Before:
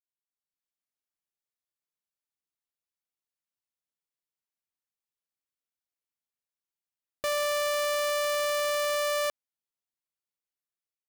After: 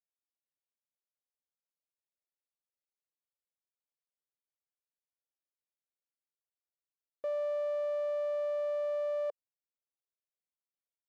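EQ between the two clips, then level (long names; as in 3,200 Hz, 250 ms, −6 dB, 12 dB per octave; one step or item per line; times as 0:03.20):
resonant band-pass 530 Hz, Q 3.1
−1.5 dB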